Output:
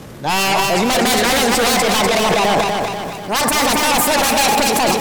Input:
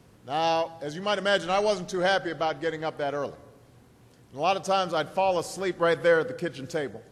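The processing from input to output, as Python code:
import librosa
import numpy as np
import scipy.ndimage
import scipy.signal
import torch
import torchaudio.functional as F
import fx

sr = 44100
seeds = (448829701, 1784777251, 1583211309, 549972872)

p1 = fx.speed_glide(x, sr, from_pct=113, to_pct=171)
p2 = fx.fold_sine(p1, sr, drive_db=19, ceiling_db=-10.0)
p3 = p1 + (p2 * librosa.db_to_amplitude(-4.0))
p4 = fx.echo_feedback(p3, sr, ms=245, feedback_pct=50, wet_db=-5.0)
y = fx.transient(p4, sr, attack_db=-2, sustain_db=10)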